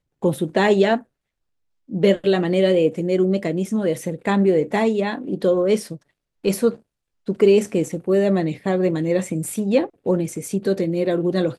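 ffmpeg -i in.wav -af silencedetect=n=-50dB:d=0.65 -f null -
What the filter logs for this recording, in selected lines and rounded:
silence_start: 1.03
silence_end: 1.88 | silence_duration: 0.85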